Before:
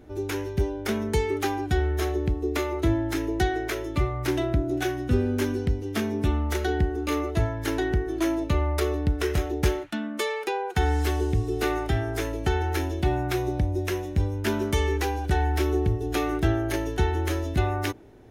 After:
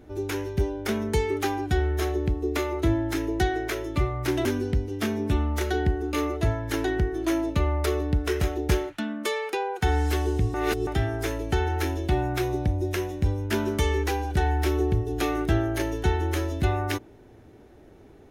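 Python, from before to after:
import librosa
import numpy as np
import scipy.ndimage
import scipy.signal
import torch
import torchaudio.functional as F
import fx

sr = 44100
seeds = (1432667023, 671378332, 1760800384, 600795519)

y = fx.edit(x, sr, fx.cut(start_s=4.45, length_s=0.94),
    fx.reverse_span(start_s=11.48, length_s=0.33), tone=tone)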